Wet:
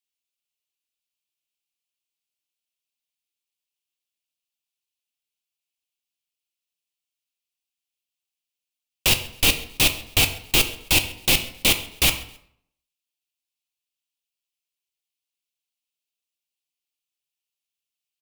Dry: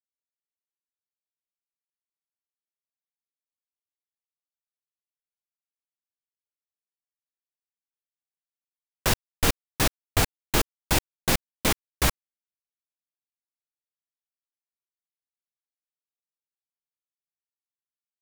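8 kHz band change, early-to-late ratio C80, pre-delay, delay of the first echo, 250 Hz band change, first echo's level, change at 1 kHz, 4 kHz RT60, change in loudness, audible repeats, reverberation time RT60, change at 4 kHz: +5.5 dB, 14.5 dB, 3 ms, 134 ms, -0.5 dB, -22.5 dB, -2.0 dB, 0.60 s, +6.5 dB, 2, 0.65 s, +10.0 dB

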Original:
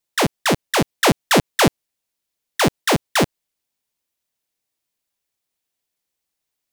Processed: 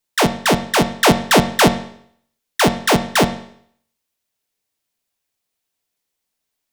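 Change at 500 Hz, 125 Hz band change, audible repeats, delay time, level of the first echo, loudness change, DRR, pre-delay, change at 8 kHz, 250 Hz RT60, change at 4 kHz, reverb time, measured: +3.0 dB, +2.5 dB, no echo, no echo, no echo, +3.0 dB, 6.5 dB, 4 ms, +2.0 dB, 0.60 s, +2.5 dB, 0.65 s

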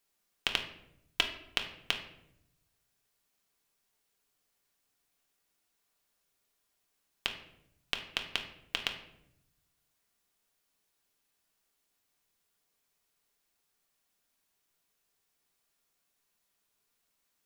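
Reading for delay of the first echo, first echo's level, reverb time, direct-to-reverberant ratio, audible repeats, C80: no echo, no echo, 0.80 s, 3.0 dB, no echo, 12.0 dB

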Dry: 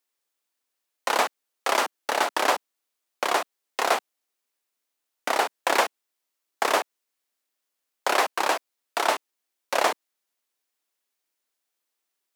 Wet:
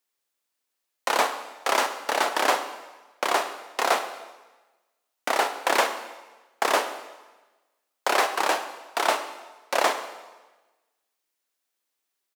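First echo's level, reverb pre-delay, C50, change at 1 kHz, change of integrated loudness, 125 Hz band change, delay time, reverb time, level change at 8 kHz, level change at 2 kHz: -17.0 dB, 16 ms, 9.5 dB, +0.5 dB, +0.5 dB, no reading, 81 ms, 1.2 s, +0.5 dB, +0.5 dB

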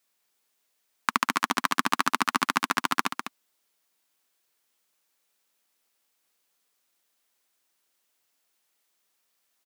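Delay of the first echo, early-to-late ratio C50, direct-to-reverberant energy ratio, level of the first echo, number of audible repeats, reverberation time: 201 ms, no reverb, no reverb, -8.5 dB, 1, no reverb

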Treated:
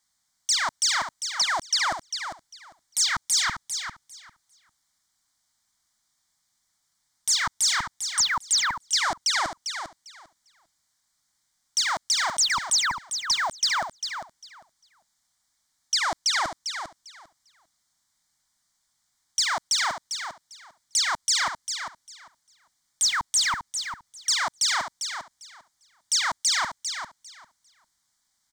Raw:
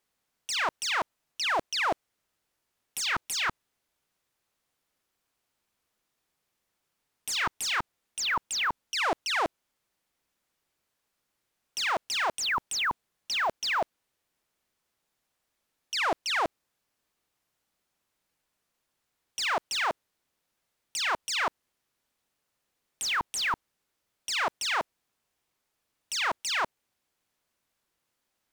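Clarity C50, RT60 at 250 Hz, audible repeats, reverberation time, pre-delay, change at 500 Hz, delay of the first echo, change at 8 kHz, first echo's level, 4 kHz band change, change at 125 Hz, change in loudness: no reverb, no reverb, 2, no reverb, no reverb, -4.5 dB, 399 ms, +12.0 dB, -8.0 dB, +7.0 dB, +1.0 dB, +5.0 dB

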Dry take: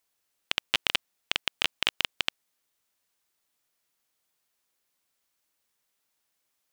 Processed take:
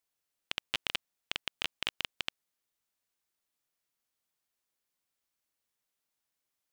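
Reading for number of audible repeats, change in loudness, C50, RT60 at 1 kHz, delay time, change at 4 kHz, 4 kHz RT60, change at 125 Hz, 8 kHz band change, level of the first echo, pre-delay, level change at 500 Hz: no echo, -8.0 dB, no reverb, no reverb, no echo, -8.0 dB, no reverb, -5.5 dB, -8.0 dB, no echo, no reverb, -7.5 dB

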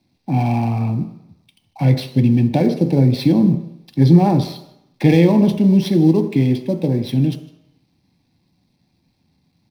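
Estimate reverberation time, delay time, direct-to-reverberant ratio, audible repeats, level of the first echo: 0.80 s, 155 ms, 6.5 dB, 1, -21.0 dB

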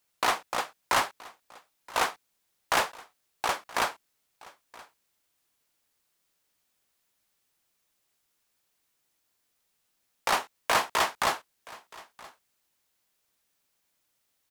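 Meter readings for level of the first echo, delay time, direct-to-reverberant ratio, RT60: -21.5 dB, 973 ms, no reverb, no reverb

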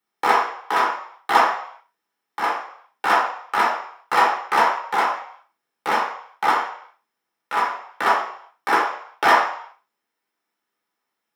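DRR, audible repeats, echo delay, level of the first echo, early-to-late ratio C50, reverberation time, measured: -4.5 dB, no echo, no echo, no echo, 4.5 dB, 0.65 s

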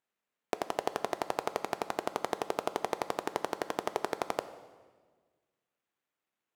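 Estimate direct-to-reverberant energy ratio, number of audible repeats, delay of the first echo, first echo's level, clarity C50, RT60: 11.0 dB, no echo, no echo, no echo, 13.0 dB, 1.5 s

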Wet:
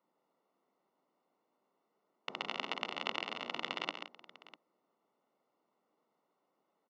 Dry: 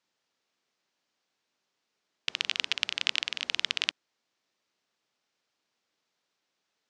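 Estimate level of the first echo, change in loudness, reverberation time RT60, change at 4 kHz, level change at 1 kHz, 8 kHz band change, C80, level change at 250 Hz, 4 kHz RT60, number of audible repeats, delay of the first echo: -7.5 dB, -10.0 dB, no reverb, -12.0 dB, +5.0 dB, -18.0 dB, no reverb, +7.5 dB, no reverb, 3, 135 ms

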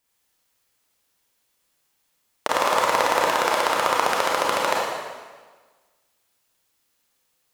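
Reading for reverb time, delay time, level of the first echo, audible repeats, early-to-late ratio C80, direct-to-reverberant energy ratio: 1.4 s, no echo, no echo, no echo, 1.5 dB, -4.0 dB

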